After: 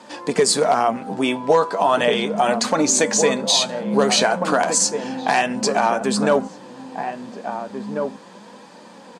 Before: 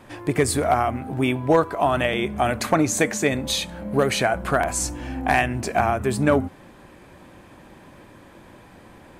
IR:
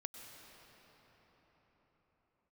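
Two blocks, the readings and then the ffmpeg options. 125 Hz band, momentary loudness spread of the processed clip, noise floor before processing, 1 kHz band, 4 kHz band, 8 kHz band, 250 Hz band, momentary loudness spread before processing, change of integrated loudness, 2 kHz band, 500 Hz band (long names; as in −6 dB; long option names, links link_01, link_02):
−6.0 dB, 13 LU, −48 dBFS, +3.5 dB, +8.0 dB, +8.0 dB, +1.5 dB, 6 LU, +3.0 dB, +1.0 dB, +4.0 dB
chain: -filter_complex "[0:a]aemphasis=mode=production:type=75fm,flanger=delay=3.3:depth=8:regen=49:speed=0.34:shape=sinusoidal,highpass=frequency=180:width=0.5412,highpass=frequency=180:width=1.3066,equalizer=frequency=200:width_type=q:width=4:gain=8,equalizer=frequency=320:width_type=q:width=4:gain=-6,equalizer=frequency=480:width_type=q:width=4:gain=8,equalizer=frequency=930:width_type=q:width=4:gain=7,equalizer=frequency=2200:width_type=q:width=4:gain=-5,equalizer=frequency=4600:width_type=q:width=4:gain=5,lowpass=frequency=7100:width=0.5412,lowpass=frequency=7100:width=1.3066,asplit=2[link_01][link_02];[link_02]adelay=1691,volume=-8dB,highshelf=frequency=4000:gain=-38[link_03];[link_01][link_03]amix=inputs=2:normalize=0,alimiter=level_in=11dB:limit=-1dB:release=50:level=0:latency=1,volume=-5dB"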